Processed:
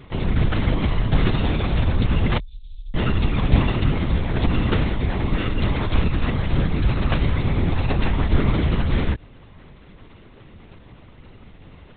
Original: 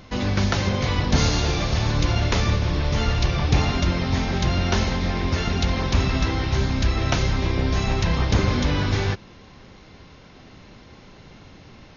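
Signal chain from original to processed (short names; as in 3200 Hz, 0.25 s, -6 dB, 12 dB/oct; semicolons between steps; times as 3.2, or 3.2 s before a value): 2.38–2.95 inverse Chebyshev band-stop 110–1900 Hz, stop band 60 dB; bell 120 Hz +7 dB 1.8 oct; LPC vocoder at 8 kHz whisper; gain -2 dB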